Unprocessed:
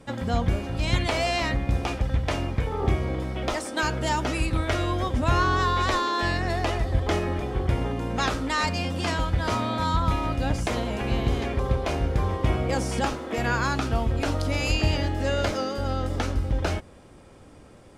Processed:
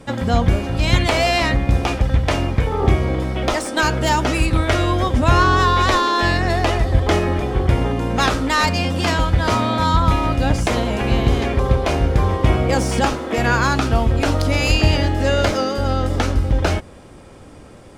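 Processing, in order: tracing distortion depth 0.026 ms; trim +8 dB

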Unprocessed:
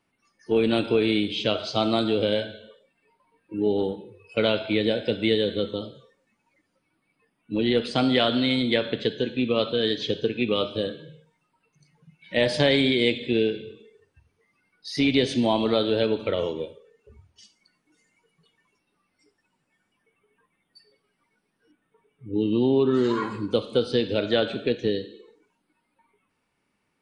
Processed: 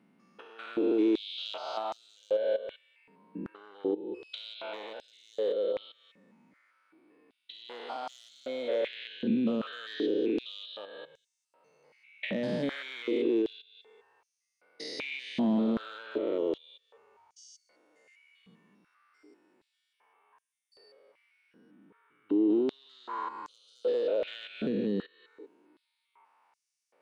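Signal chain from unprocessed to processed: spectrogram pixelated in time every 200 ms; in parallel at -10 dB: wavefolder -22 dBFS; on the sum: treble shelf 2.5 kHz -11 dB; compression 5:1, threshold -38 dBFS, peak gain reduction 17.5 dB; step-sequenced high-pass 2.6 Hz 200–6200 Hz; trim +4.5 dB

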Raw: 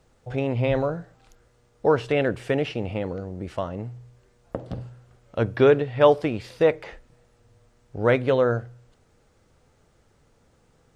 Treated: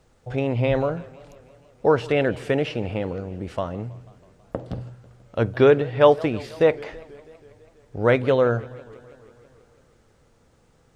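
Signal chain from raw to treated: modulated delay 163 ms, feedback 70%, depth 200 cents, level -22 dB; trim +1.5 dB

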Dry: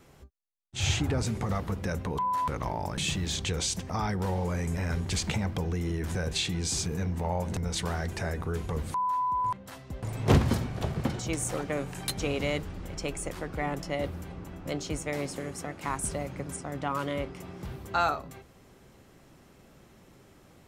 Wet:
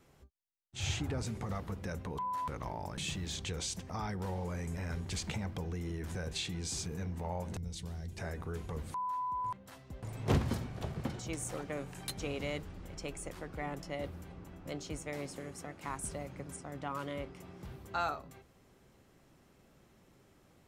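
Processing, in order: 7.57–8.18 s: FFT filter 130 Hz 0 dB, 1.4 kHz -17 dB, 3.6 kHz -5 dB; trim -8 dB

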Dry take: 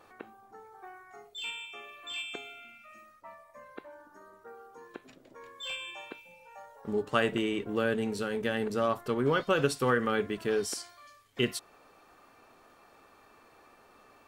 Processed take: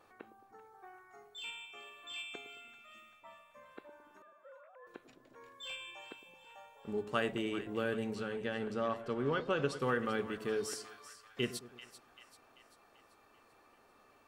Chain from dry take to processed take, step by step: 4.22–4.87 s: formants replaced by sine waves; 8.15–9.82 s: distance through air 66 m; two-band feedback delay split 820 Hz, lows 108 ms, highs 389 ms, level -13 dB; trim -6.5 dB

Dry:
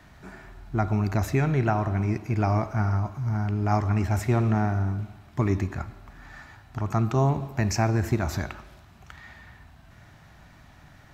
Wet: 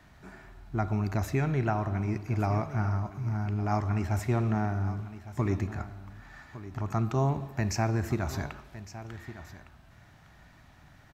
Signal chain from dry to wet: on a send: delay 1159 ms -14.5 dB; on the sum: trim -4.5 dB

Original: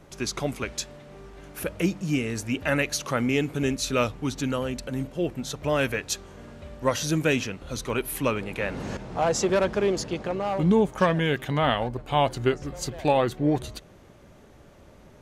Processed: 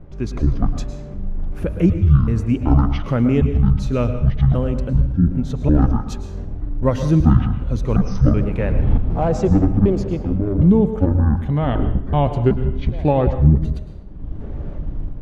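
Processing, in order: pitch shift switched off and on -12 st, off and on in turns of 379 ms; tilt EQ -4.5 dB/octave; level-controlled noise filter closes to 2.6 kHz, open at -22.5 dBFS; level rider gain up to 12.5 dB; reverberation RT60 0.75 s, pre-delay 101 ms, DRR 9.5 dB; trim -2.5 dB

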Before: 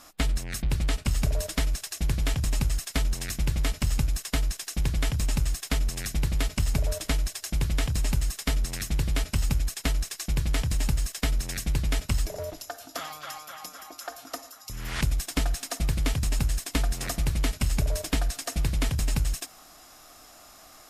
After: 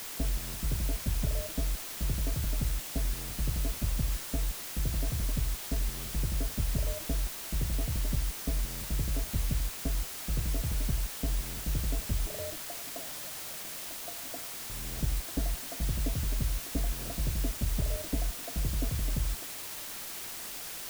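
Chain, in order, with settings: elliptic low-pass 680 Hz, stop band 40 dB; word length cut 6-bit, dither triangular; trim -4.5 dB

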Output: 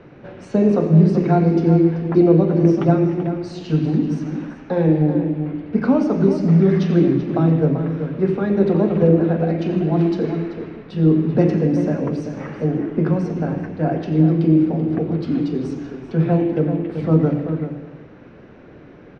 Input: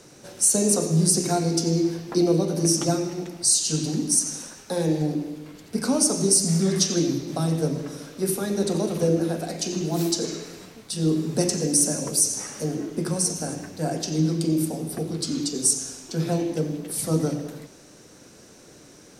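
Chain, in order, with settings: low-pass 2.5 kHz 24 dB/octave; bass shelf 270 Hz +5 dB; echo from a far wall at 66 m, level -9 dB; trim +5 dB

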